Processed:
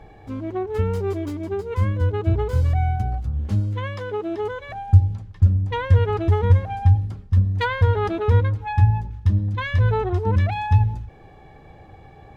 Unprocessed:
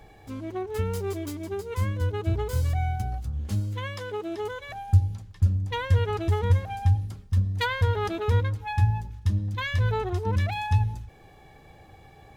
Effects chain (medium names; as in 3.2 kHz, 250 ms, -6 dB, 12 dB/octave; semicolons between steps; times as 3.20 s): low-pass 1.6 kHz 6 dB/octave; trim +6 dB